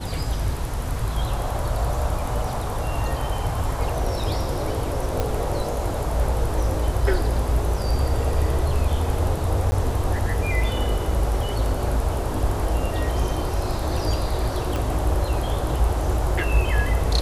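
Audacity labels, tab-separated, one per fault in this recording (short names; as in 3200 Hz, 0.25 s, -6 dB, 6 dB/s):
5.200000	5.200000	pop -10 dBFS
9.710000	9.720000	gap 10 ms
14.760000	14.760000	pop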